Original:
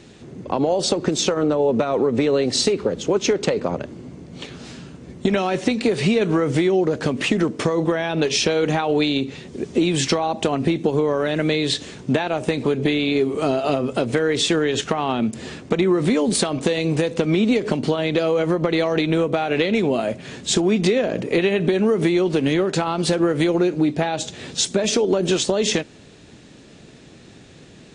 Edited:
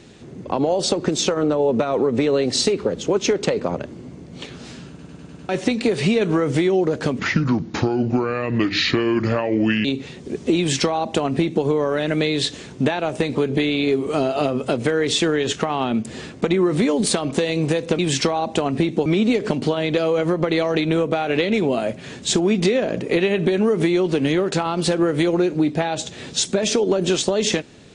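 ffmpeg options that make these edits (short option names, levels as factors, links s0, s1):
-filter_complex "[0:a]asplit=11[s0][s1][s2][s3][s4][s5][s6][s7][s8][s9][s10];[s0]atrim=end=4.992[s11];[s1]atrim=start=4.888:end=4.992[s12];[s2]atrim=start=4.888:end=4.992[s13];[s3]atrim=start=4.888:end=4.992[s14];[s4]atrim=start=4.888:end=4.992[s15];[s5]atrim=start=4.888:end=4.992[s16];[s6]atrim=start=5.488:end=7.194[s17];[s7]atrim=start=7.19:end=9.13,asetpts=PTS-STARTPTS,asetrate=32193,aresample=44100,atrim=end_sample=117197,asetpts=PTS-STARTPTS[s18];[s8]atrim=start=9.126:end=17.272[s19];[s9]atrim=start=9.858:end=10.932[s20];[s10]atrim=start=17.268[s21];[s11][s12]acrossfade=d=0.004:c1=hsin:c2=hsin[s22];[s22][s13]acrossfade=d=0.004:c1=hsin:c2=hsin[s23];[s23][s14]acrossfade=d=0.004:c1=hsin:c2=hsin[s24];[s24][s15]acrossfade=d=0.004:c1=hsin:c2=hsin[s25];[s25][s16]acrossfade=d=0.004:c1=hsin:c2=hsin[s26];[s26][s17]acrossfade=d=0.004:c1=hsin:c2=hsin[s27];[s27][s18]acrossfade=d=0.004:c1=hsin:c2=hsin[s28];[s28][s19]acrossfade=d=0.004:c1=hsin:c2=hsin[s29];[s29][s20]acrossfade=d=0.004:c1=hsin:c2=hsin[s30];[s30][s21]acrossfade=d=0.004:c1=hsin:c2=hsin"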